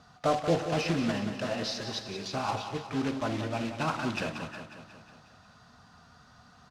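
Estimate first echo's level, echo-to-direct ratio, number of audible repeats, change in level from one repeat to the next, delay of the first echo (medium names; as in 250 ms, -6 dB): -9.5 dB, -7.5 dB, 6, -4.5 dB, 181 ms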